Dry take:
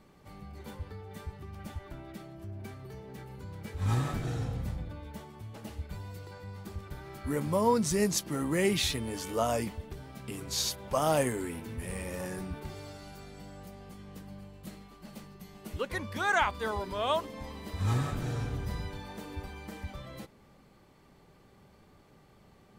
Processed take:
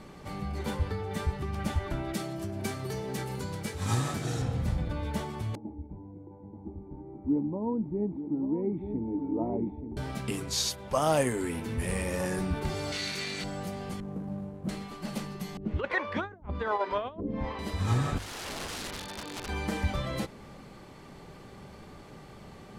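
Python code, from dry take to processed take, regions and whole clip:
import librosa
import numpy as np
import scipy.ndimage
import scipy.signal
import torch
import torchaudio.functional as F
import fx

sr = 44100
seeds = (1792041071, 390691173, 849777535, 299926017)

y = fx.chain(x, sr, fx.highpass(hz=94.0, slope=12),
    fx.bass_treble(bass_db=-1, treble_db=8), at=(2.13, 4.42))
y = fx.chain(y, sr, fx.formant_cascade(vowel='u'),
    fx.echo_single(ms=881, db=-9.5), at=(5.55, 9.97))
y = fx.chain(y, sr, fx.lower_of_two(delay_ms=0.48),
    fx.weighting(curve='D'), at=(12.92, 13.44))
y = fx.chain(y, sr, fx.median_filter(points=25),
    fx.highpass(hz=40.0, slope=12),
    fx.peak_eq(hz=4100.0, db=-13.5, octaves=2.6), at=(14.0, 14.69))
y = fx.chain(y, sr, fx.lowpass(hz=2300.0, slope=12),
    fx.over_compress(threshold_db=-34.0, ratio=-0.5),
    fx.harmonic_tremolo(hz=1.2, depth_pct=100, crossover_hz=410.0), at=(15.57, 17.59))
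y = fx.chain(y, sr, fx.ladder_lowpass(hz=5200.0, resonance_pct=40),
    fx.overflow_wrap(gain_db=44.0), at=(18.18, 19.49))
y = scipy.signal.sosfilt(scipy.signal.butter(2, 11000.0, 'lowpass', fs=sr, output='sos'), y)
y = fx.hum_notches(y, sr, base_hz=50, count=2)
y = fx.rider(y, sr, range_db=5, speed_s=0.5)
y = y * 10.0 ** (6.5 / 20.0)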